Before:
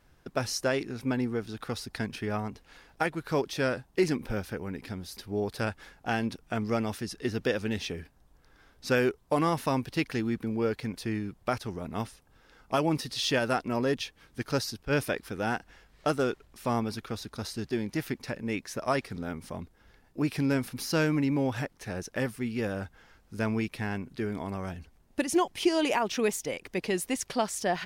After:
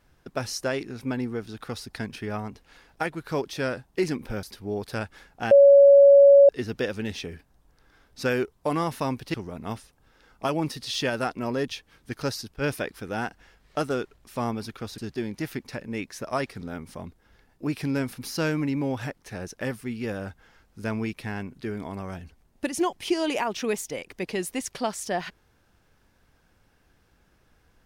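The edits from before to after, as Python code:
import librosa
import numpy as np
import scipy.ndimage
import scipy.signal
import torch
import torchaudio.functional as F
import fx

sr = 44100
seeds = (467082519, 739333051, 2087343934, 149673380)

y = fx.edit(x, sr, fx.cut(start_s=4.43, length_s=0.66),
    fx.bleep(start_s=6.17, length_s=0.98, hz=561.0, db=-9.5),
    fx.cut(start_s=10.0, length_s=1.63),
    fx.cut(start_s=17.27, length_s=0.26), tone=tone)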